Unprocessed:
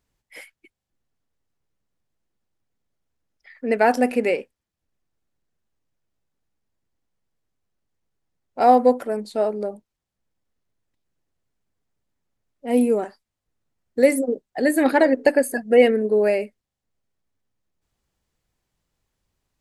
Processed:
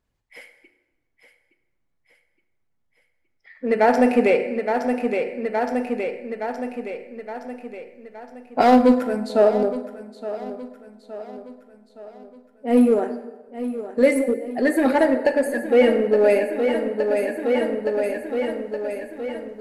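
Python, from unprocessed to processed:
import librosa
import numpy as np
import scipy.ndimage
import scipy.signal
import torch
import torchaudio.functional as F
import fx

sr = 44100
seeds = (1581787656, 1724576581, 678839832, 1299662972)

p1 = fx.spec_quant(x, sr, step_db=15)
p2 = fx.high_shelf(p1, sr, hz=5400.0, db=-9.0)
p3 = fx.rev_plate(p2, sr, seeds[0], rt60_s=1.1, hf_ratio=0.75, predelay_ms=0, drr_db=7.5)
p4 = np.clip(p3, -10.0 ** (-19.5 / 20.0), 10.0 ** (-19.5 / 20.0))
p5 = p3 + (p4 * librosa.db_to_amplitude(-8.0))
p6 = fx.peak_eq(p5, sr, hz=650.0, db=-10.0, octaves=1.9, at=(8.61, 9.3))
p7 = p6 + fx.echo_feedback(p6, sr, ms=868, feedback_pct=54, wet_db=-11.5, dry=0)
y = fx.rider(p7, sr, range_db=10, speed_s=2.0)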